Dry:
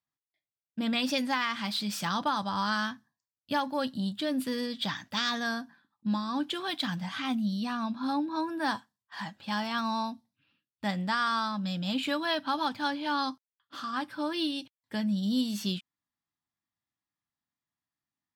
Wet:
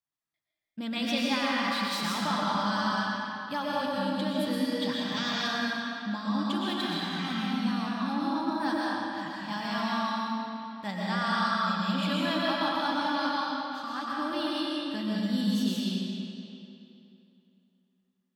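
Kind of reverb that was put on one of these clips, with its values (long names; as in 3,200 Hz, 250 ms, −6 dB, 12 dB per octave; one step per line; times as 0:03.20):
comb and all-pass reverb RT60 2.9 s, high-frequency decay 0.8×, pre-delay 80 ms, DRR −5.5 dB
level −4.5 dB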